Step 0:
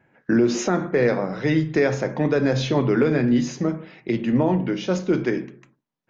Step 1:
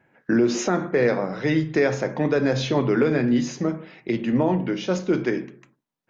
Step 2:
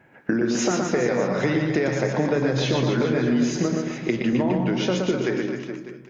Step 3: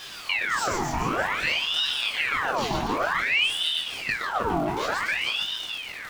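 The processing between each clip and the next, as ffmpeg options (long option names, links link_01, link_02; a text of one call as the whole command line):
ffmpeg -i in.wav -af "lowshelf=frequency=160:gain=-4.5" out.wav
ffmpeg -i in.wav -filter_complex "[0:a]acompressor=threshold=-27dB:ratio=10,asplit=2[link_01][link_02];[link_02]aecho=0:1:120|258|416.7|599.2|809.1:0.631|0.398|0.251|0.158|0.1[link_03];[link_01][link_03]amix=inputs=2:normalize=0,volume=7dB" out.wav
ffmpeg -i in.wav -af "aeval=exprs='val(0)+0.5*0.0376*sgn(val(0))':channel_layout=same,flanger=delay=19.5:depth=6.4:speed=0.7,aeval=exprs='val(0)*sin(2*PI*1900*n/s+1900*0.75/0.54*sin(2*PI*0.54*n/s))':channel_layout=same" out.wav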